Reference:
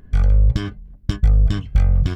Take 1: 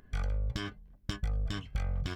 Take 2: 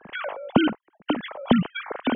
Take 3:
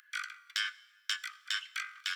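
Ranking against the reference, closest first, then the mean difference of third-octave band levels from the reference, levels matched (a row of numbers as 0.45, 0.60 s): 1, 2, 3; 5.0, 11.5, 19.0 dB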